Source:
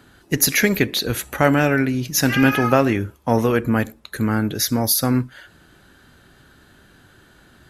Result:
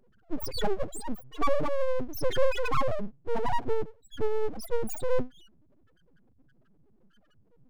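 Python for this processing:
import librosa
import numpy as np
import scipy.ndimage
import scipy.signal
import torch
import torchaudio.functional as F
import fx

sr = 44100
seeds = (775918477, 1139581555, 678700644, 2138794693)

y = fx.spec_topn(x, sr, count=1)
y = np.abs(y)
y = y * 10.0 ** (3.5 / 20.0)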